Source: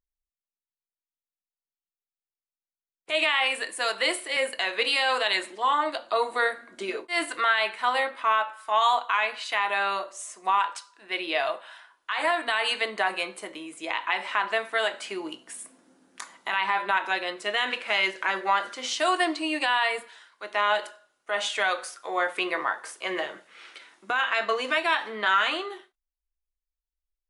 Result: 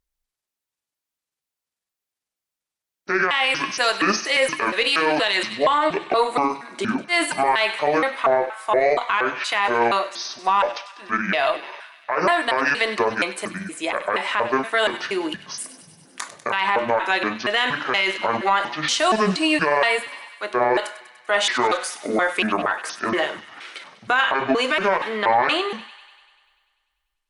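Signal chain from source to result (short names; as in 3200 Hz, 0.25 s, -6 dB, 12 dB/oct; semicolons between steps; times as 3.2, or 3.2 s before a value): trilling pitch shifter -9 st, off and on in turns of 0.236 s; added harmonics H 2 -23 dB, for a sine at -10.5 dBFS; thin delay 98 ms, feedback 69%, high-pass 1800 Hz, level -14.5 dB; maximiser +17 dB; gain -8 dB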